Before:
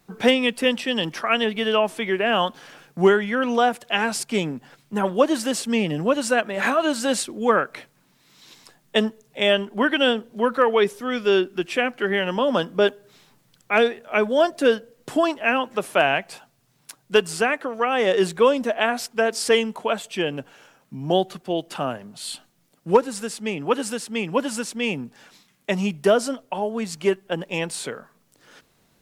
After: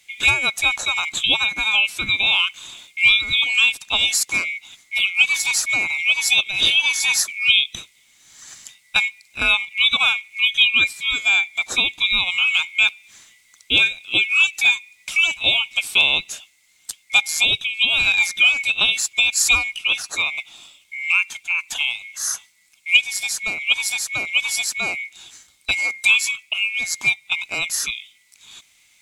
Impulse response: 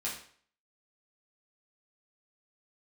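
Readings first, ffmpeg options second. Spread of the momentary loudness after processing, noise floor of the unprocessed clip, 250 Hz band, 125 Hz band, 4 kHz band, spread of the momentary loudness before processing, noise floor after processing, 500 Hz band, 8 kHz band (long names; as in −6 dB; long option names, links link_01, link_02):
10 LU, −63 dBFS, −17.5 dB, can't be measured, +11.0 dB, 10 LU, −57 dBFS, −21.0 dB, +10.0 dB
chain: -filter_complex "[0:a]afftfilt=real='real(if(lt(b,920),b+92*(1-2*mod(floor(b/92),2)),b),0)':imag='imag(if(lt(b,920),b+92*(1-2*mod(floor(b/92),2)),b),0)':win_size=2048:overlap=0.75,asplit=2[link_01][link_02];[link_02]acompressor=threshold=-25dB:ratio=6,volume=-3dB[link_03];[link_01][link_03]amix=inputs=2:normalize=0,equalizer=frequency=500:width_type=o:width=1:gain=-7,equalizer=frequency=4000:width_type=o:width=1:gain=7,equalizer=frequency=8000:width_type=o:width=1:gain=11,volume=-4dB"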